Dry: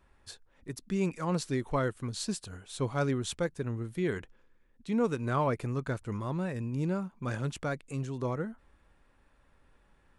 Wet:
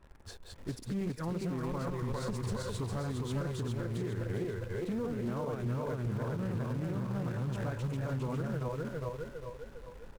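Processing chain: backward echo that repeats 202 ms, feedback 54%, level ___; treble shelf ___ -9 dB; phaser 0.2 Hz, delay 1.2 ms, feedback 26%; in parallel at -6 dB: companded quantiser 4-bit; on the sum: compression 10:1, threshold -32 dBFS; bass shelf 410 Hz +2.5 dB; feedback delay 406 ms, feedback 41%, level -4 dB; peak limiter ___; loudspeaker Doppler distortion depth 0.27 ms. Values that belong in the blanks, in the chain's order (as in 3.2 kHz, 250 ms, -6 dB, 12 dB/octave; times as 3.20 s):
-3.5 dB, 2.3 kHz, -27 dBFS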